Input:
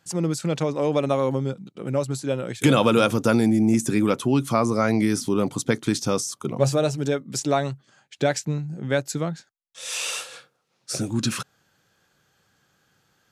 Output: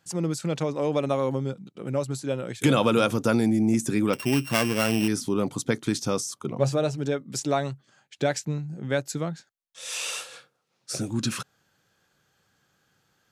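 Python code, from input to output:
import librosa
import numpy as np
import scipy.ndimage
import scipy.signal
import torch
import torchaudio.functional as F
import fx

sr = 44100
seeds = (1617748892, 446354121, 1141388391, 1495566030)

y = fx.sample_sort(x, sr, block=16, at=(4.13, 5.08))
y = fx.high_shelf(y, sr, hz=7800.0, db=-9.0, at=(6.39, 7.2))
y = F.gain(torch.from_numpy(y), -3.0).numpy()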